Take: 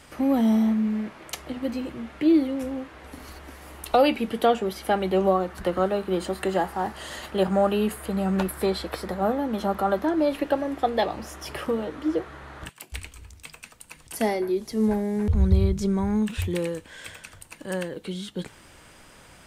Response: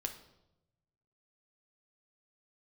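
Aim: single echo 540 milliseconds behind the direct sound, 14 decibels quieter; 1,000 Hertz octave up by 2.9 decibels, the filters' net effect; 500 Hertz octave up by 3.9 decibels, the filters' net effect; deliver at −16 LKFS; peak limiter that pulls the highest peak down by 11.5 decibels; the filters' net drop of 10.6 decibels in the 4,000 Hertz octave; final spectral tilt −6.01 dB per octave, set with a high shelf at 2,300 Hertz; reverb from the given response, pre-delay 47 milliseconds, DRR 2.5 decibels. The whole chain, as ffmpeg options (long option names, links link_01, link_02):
-filter_complex "[0:a]equalizer=frequency=500:width_type=o:gain=4.5,equalizer=frequency=1000:width_type=o:gain=3.5,highshelf=frequency=2300:gain=-7.5,equalizer=frequency=4000:width_type=o:gain=-8,alimiter=limit=-16.5dB:level=0:latency=1,aecho=1:1:540:0.2,asplit=2[link_01][link_02];[1:a]atrim=start_sample=2205,adelay=47[link_03];[link_02][link_03]afir=irnorm=-1:irlink=0,volume=-2dB[link_04];[link_01][link_04]amix=inputs=2:normalize=0,volume=8.5dB"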